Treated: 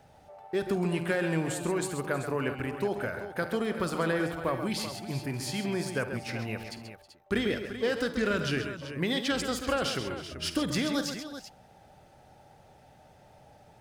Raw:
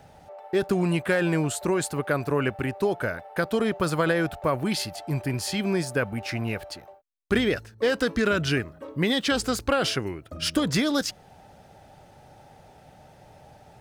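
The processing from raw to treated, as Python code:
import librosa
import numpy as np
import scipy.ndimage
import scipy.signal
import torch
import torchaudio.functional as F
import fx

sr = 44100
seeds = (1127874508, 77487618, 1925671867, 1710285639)

y = fx.hum_notches(x, sr, base_hz=50, count=3)
y = fx.echo_multitap(y, sr, ms=(50, 74, 133, 320, 385), db=(-14.0, -18.0, -9.0, -18.0, -11.5))
y = y * librosa.db_to_amplitude(-6.0)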